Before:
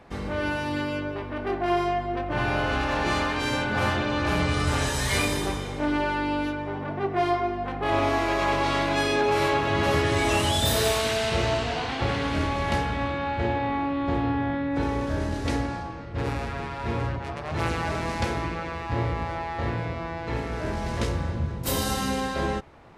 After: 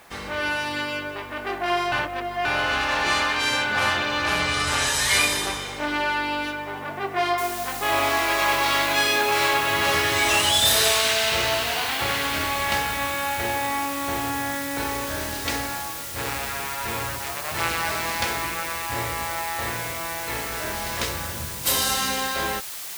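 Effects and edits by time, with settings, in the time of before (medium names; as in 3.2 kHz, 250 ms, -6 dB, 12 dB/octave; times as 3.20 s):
1.92–2.45 s: reverse
7.38 s: noise floor step -65 dB -43 dB
whole clip: tilt shelf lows -8.5 dB, about 660 Hz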